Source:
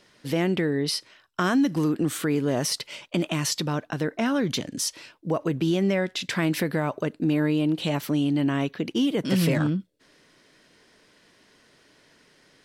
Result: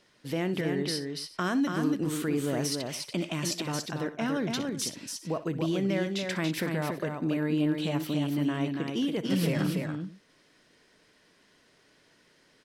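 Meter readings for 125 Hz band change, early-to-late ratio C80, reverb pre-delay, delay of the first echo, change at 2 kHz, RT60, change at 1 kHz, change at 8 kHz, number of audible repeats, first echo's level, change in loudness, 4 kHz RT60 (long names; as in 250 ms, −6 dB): −4.5 dB, no reverb audible, no reverb audible, 62 ms, −4.5 dB, no reverb audible, −4.5 dB, −4.5 dB, 3, −15.0 dB, −4.5 dB, no reverb audible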